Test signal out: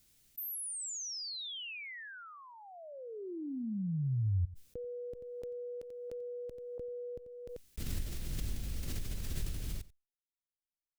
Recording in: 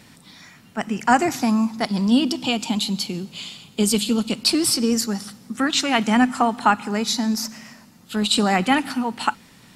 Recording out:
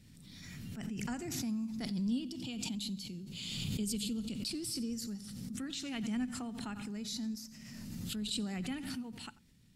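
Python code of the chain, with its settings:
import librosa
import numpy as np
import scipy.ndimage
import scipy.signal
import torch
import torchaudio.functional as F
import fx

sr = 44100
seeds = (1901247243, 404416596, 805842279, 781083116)

p1 = fx.tone_stack(x, sr, knobs='10-0-1')
p2 = p1 + fx.echo_single(p1, sr, ms=89, db=-19.5, dry=0)
y = fx.pre_swell(p2, sr, db_per_s=24.0)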